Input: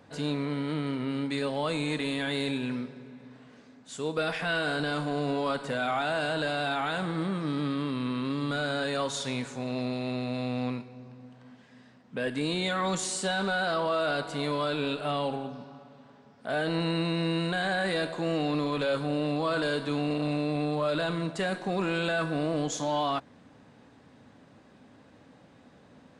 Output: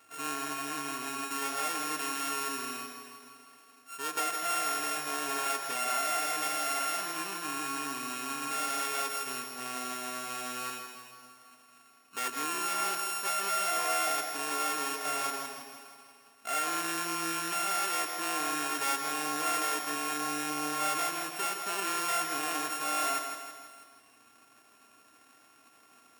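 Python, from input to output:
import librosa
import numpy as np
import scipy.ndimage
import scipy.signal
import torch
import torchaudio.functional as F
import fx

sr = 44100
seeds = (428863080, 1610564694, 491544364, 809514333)

y = np.r_[np.sort(x[:len(x) // 32 * 32].reshape(-1, 32), axis=1).ravel(), x[len(x) // 32 * 32:]]
y = fx.highpass(y, sr, hz=1400.0, slope=6)
y = fx.peak_eq(y, sr, hz=4000.0, db=-5.0, octaves=0.53)
y = y + 0.57 * np.pad(y, (int(2.8 * sr / 1000.0), 0))[:len(y)]
y = fx.echo_feedback(y, sr, ms=162, feedback_pct=53, wet_db=-7.0)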